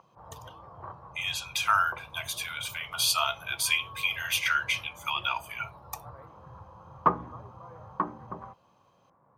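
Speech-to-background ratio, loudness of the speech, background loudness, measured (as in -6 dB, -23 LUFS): 11.0 dB, -28.5 LUFS, -39.5 LUFS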